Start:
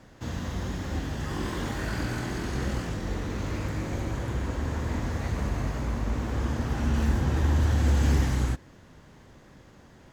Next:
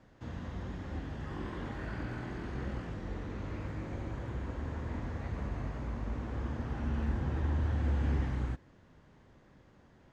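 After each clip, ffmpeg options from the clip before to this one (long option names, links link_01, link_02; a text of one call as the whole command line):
ffmpeg -i in.wav -filter_complex "[0:a]aemphasis=mode=reproduction:type=50fm,acrossover=split=3400[link_01][link_02];[link_02]acompressor=threshold=-57dB:ratio=4:attack=1:release=60[link_03];[link_01][link_03]amix=inputs=2:normalize=0,volume=-8.5dB" out.wav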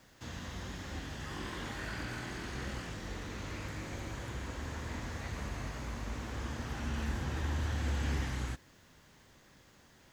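ffmpeg -i in.wav -af "crystalizer=i=9:c=0,volume=-3.5dB" out.wav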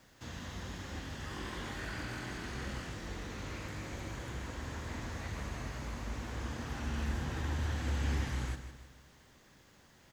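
ffmpeg -i in.wav -af "aecho=1:1:156|312|468|624|780:0.282|0.135|0.0649|0.0312|0.015,volume=-1dB" out.wav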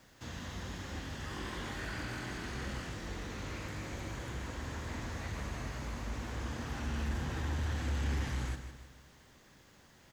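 ffmpeg -i in.wav -af "asoftclip=type=tanh:threshold=-26.5dB,volume=1dB" out.wav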